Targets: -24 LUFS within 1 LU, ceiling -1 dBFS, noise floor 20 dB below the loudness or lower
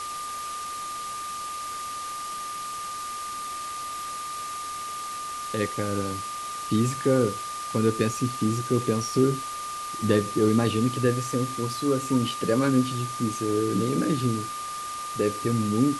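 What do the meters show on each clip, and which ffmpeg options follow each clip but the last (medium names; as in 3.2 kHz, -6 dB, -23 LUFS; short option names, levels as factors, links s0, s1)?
steady tone 1.2 kHz; tone level -32 dBFS; noise floor -34 dBFS; noise floor target -47 dBFS; loudness -27.0 LUFS; peak level -8.5 dBFS; loudness target -24.0 LUFS
-> -af "bandreject=f=1200:w=30"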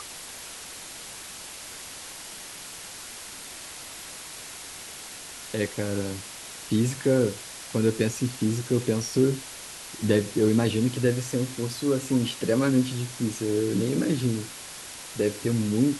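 steady tone not found; noise floor -41 dBFS; noise floor target -48 dBFS
-> -af "afftdn=nr=7:nf=-41"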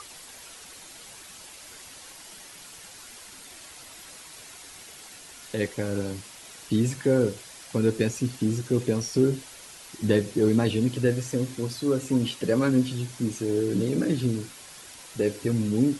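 noise floor -46 dBFS; loudness -26.0 LUFS; peak level -9.5 dBFS; loudness target -24.0 LUFS
-> -af "volume=1.26"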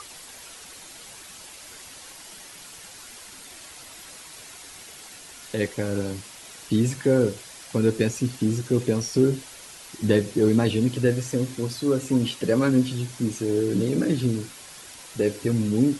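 loudness -24.0 LUFS; peak level -7.5 dBFS; noise floor -44 dBFS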